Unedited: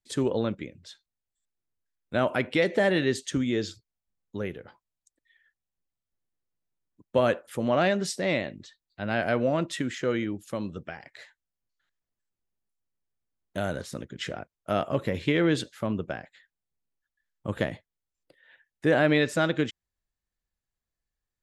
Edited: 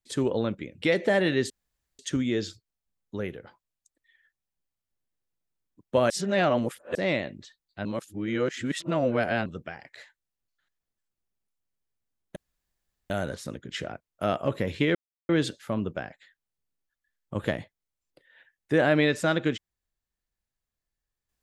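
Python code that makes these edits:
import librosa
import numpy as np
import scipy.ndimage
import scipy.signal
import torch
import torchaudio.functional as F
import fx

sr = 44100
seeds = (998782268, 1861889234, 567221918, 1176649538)

y = fx.edit(x, sr, fx.cut(start_s=0.82, length_s=1.7),
    fx.insert_room_tone(at_s=3.2, length_s=0.49),
    fx.reverse_span(start_s=7.31, length_s=0.85),
    fx.reverse_span(start_s=9.06, length_s=1.61),
    fx.insert_room_tone(at_s=13.57, length_s=0.74),
    fx.insert_silence(at_s=15.42, length_s=0.34), tone=tone)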